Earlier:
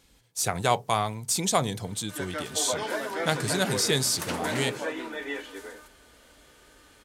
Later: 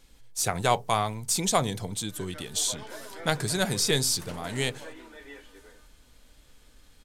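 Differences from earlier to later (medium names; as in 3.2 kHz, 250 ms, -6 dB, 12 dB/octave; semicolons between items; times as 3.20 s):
speech: remove high-pass 53 Hz; background -12.0 dB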